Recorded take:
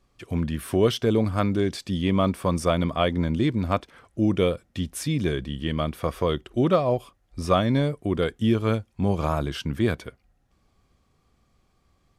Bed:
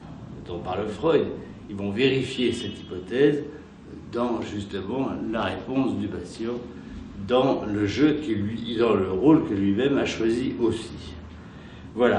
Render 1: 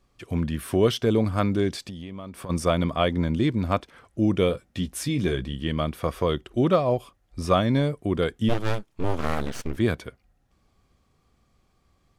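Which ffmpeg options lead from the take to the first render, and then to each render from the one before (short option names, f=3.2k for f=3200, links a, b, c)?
-filter_complex "[0:a]asplit=3[a][b][c];[a]afade=t=out:st=1.86:d=0.02[d];[b]acompressor=threshold=-32dB:ratio=20:attack=3.2:release=140:knee=1:detection=peak,afade=t=in:st=1.86:d=0.02,afade=t=out:st=2.49:d=0.02[e];[c]afade=t=in:st=2.49:d=0.02[f];[d][e][f]amix=inputs=3:normalize=0,asettb=1/sr,asplit=3[g][h][i];[g]atrim=end=4.484[j];[h]atrim=start=4.48:end=5.53,asetpts=PTS-STARTPTS,afade=t=in:d=0.004:c=qsin,afade=t=out:st=1.046:d=0.004:c=qsin,asplit=2[k][l];[l]adelay=16,volume=-8dB[m];[k][m]amix=inputs=2:normalize=0,atrim=end_sample=46305[n];[i]atrim=start=5.526[o];[j][n]acrossfade=d=0.004:c1=hsin:c2=qsin[p];[p][o]acrossfade=d=0.004:c1=qsin:c2=hsin,asplit=3[q][r][s];[q]afade=t=out:st=8.48:d=0.02[t];[r]aeval=exprs='abs(val(0))':c=same,afade=t=in:st=8.48:d=0.02,afade=t=out:st=9.76:d=0.02[u];[s]afade=t=in:st=9.76:d=0.02[v];[t][u][v]amix=inputs=3:normalize=0"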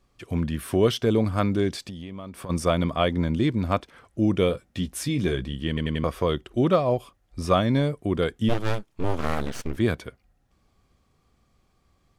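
-filter_complex "[0:a]asplit=5[a][b][c][d][e];[a]atrim=end=5.772[f];[b]atrim=start=5.678:end=5.772[g];[c]atrim=start=5.678:end=5.772[h];[d]atrim=start=5.678:end=5.772[i];[e]atrim=start=6.038[j];[f][g]acrossfade=d=0.004:c1=hsin:c2=hsin[k];[k][h]acrossfade=d=0.004:c1=hsin:c2=hsin[l];[l][i]acrossfade=d=0.004:c1=hsin:c2=hsin[m];[m][j]acrossfade=d=0.004:c1=hsin:c2=hsin"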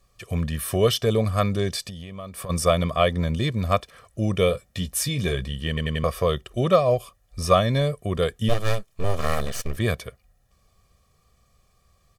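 -af "aemphasis=mode=production:type=cd,aecho=1:1:1.7:0.66"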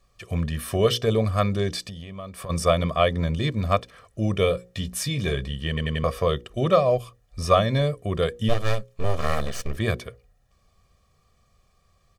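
-af "equalizer=f=13k:w=0.56:g=-7,bandreject=f=60:t=h:w=6,bandreject=f=120:t=h:w=6,bandreject=f=180:t=h:w=6,bandreject=f=240:t=h:w=6,bandreject=f=300:t=h:w=6,bandreject=f=360:t=h:w=6,bandreject=f=420:t=h:w=6,bandreject=f=480:t=h:w=6,bandreject=f=540:t=h:w=6"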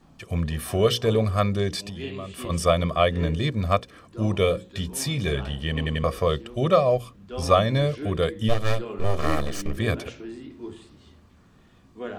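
-filter_complex "[1:a]volume=-14.5dB[a];[0:a][a]amix=inputs=2:normalize=0"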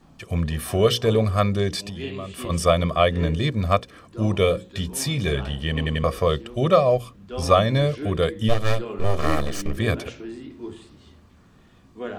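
-af "volume=2dB,alimiter=limit=-2dB:level=0:latency=1"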